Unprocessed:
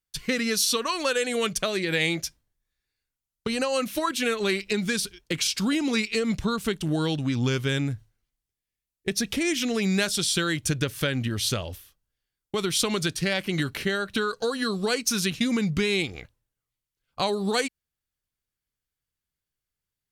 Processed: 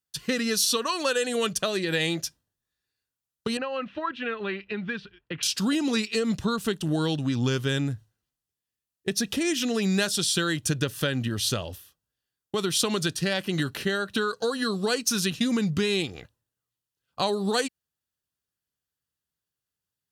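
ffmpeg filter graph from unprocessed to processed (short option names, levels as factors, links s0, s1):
-filter_complex "[0:a]asettb=1/sr,asplit=3[s0][s1][s2];[s0]atrim=end=3.574[s3];[s1]atrim=start=3.57:end=5.43,asetpts=PTS-STARTPTS,afade=t=in:d=0.004:c=qsin,afade=t=out:st=1.856:d=0.004:c=qsin,lowpass=f=2600:w=0.5412,lowpass=f=2600:w=1.3066,equalizer=f=340:w=0.41:g=-6.5[s4];[s2]atrim=start=5.426[s5];[s3][s4]acrossfade=d=0.004:c1=hsin:c2=qsin[s6];[s6][s5]acrossfade=d=0.004:c1=qsin:c2=hsin,highpass=84,bandreject=f=2200:w=5.6"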